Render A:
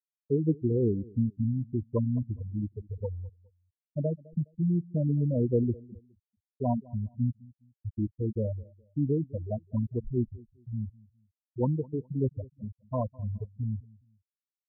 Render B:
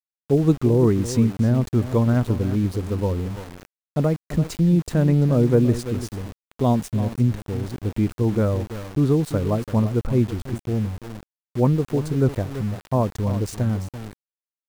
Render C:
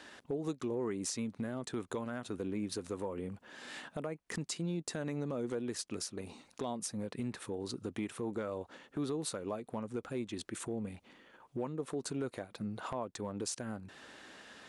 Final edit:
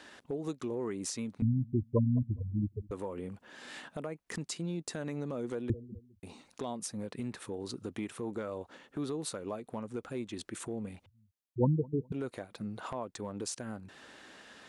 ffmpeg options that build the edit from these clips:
-filter_complex "[0:a]asplit=3[s0][s1][s2];[2:a]asplit=4[s3][s4][s5][s6];[s3]atrim=end=1.422[s7];[s0]atrim=start=1.418:end=2.912[s8];[s4]atrim=start=2.908:end=5.702[s9];[s1]atrim=start=5.698:end=6.232[s10];[s5]atrim=start=6.228:end=11.062[s11];[s2]atrim=start=11.058:end=12.122[s12];[s6]atrim=start=12.118[s13];[s7][s8]acrossfade=d=0.004:c1=hsin:c2=hsin[s14];[s14][s9]acrossfade=d=0.004:c1=hsin:c2=hsin[s15];[s15][s10]acrossfade=d=0.004:c1=hsin:c2=hsin[s16];[s16][s11]acrossfade=d=0.004:c1=hsin:c2=hsin[s17];[s17][s12]acrossfade=d=0.004:c1=hsin:c2=hsin[s18];[s18][s13]acrossfade=d=0.004:c1=hsin:c2=hsin"

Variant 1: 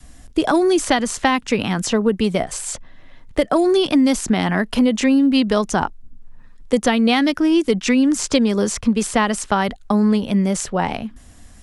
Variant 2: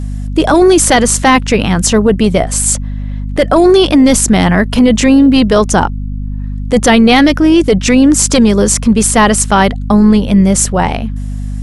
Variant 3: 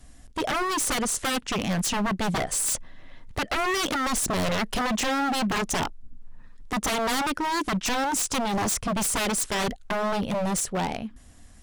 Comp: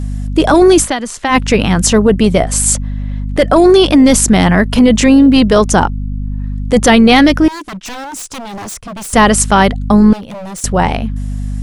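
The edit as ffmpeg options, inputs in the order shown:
-filter_complex "[2:a]asplit=2[s0][s1];[1:a]asplit=4[s2][s3][s4][s5];[s2]atrim=end=0.89[s6];[0:a]atrim=start=0.79:end=1.37[s7];[s3]atrim=start=1.27:end=7.482[s8];[s0]atrim=start=7.478:end=9.132[s9];[s4]atrim=start=9.128:end=10.132[s10];[s1]atrim=start=10.128:end=10.642[s11];[s5]atrim=start=10.638[s12];[s6][s7]acrossfade=d=0.1:c1=tri:c2=tri[s13];[s13][s8]acrossfade=d=0.1:c1=tri:c2=tri[s14];[s14][s9]acrossfade=d=0.004:c1=hsin:c2=hsin[s15];[s15][s10]acrossfade=d=0.004:c1=hsin:c2=hsin[s16];[s16][s11]acrossfade=d=0.004:c1=hsin:c2=hsin[s17];[s17][s12]acrossfade=d=0.004:c1=hsin:c2=hsin"

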